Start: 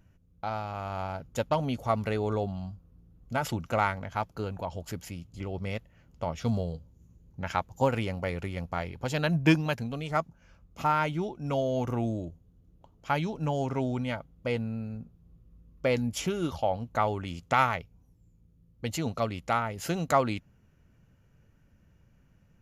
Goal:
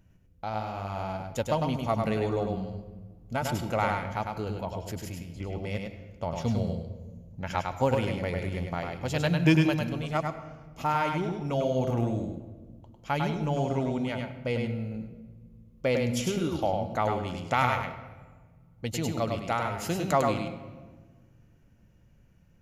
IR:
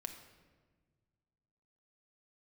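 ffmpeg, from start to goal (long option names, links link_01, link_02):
-filter_complex "[0:a]equalizer=frequency=1300:width_type=o:width=0.83:gain=-3.5,asplit=2[link_01][link_02];[1:a]atrim=start_sample=2205,adelay=101[link_03];[link_02][link_03]afir=irnorm=-1:irlink=0,volume=-0.5dB[link_04];[link_01][link_04]amix=inputs=2:normalize=0"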